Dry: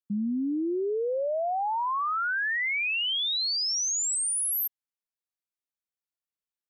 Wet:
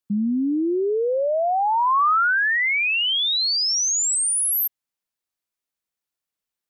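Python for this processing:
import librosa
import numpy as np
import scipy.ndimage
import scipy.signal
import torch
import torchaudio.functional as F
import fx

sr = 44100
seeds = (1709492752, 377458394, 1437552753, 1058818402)

y = fx.dynamic_eq(x, sr, hz=1200.0, q=1.9, threshold_db=-39.0, ratio=4.0, max_db=4)
y = F.gain(torch.from_numpy(y), 6.5).numpy()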